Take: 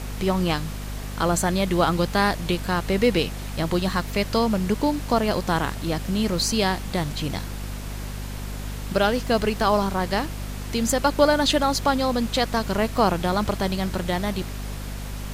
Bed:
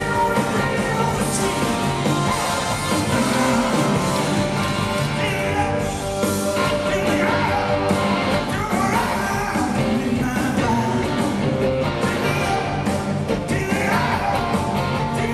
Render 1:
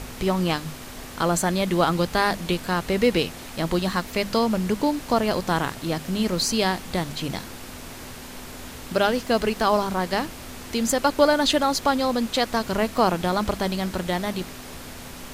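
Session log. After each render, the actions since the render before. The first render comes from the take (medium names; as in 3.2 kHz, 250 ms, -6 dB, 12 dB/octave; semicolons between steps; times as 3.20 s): hum notches 50/100/150/200 Hz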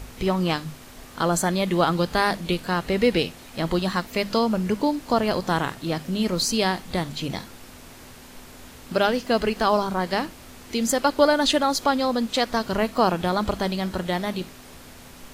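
noise print and reduce 6 dB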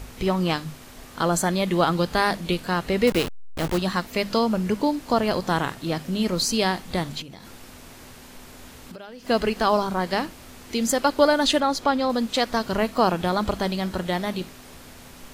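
3.07–3.78 s: send-on-delta sampling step -24 dBFS; 7.21–9.28 s: compression 16:1, threshold -36 dBFS; 11.60–12.10 s: treble shelf 5.6 kHz -9 dB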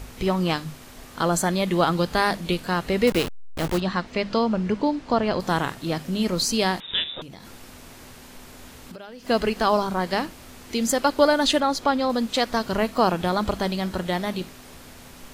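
3.80–5.40 s: distance through air 110 m; 6.80–7.22 s: frequency inversion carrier 3.7 kHz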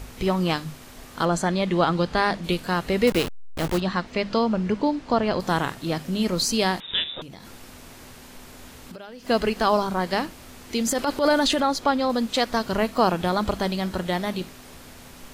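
1.25–2.44 s: distance through air 67 m; 10.79–11.62 s: transient shaper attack -10 dB, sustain +4 dB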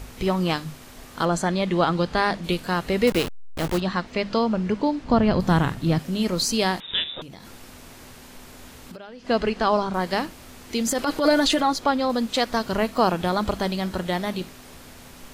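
5.04–5.99 s: tone controls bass +11 dB, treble -3 dB; 8.97–9.94 s: distance through air 74 m; 11.05–11.73 s: comb 6.3 ms, depth 56%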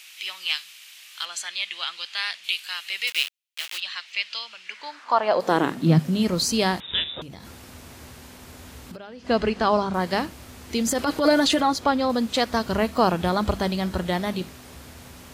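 high-pass sweep 2.7 kHz -> 68 Hz, 4.65–6.39 s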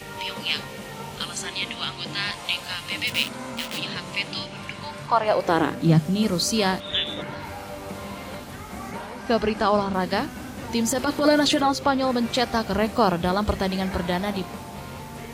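add bed -16.5 dB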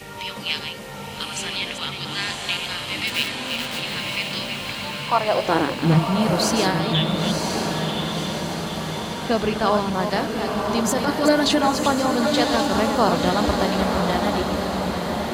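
chunks repeated in reverse 198 ms, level -7 dB; on a send: echo that smears into a reverb 1008 ms, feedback 61%, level -4 dB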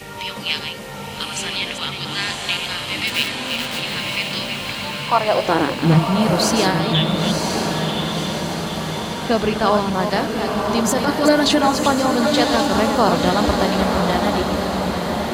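trim +3 dB; peak limiter -3 dBFS, peak gain reduction 1.5 dB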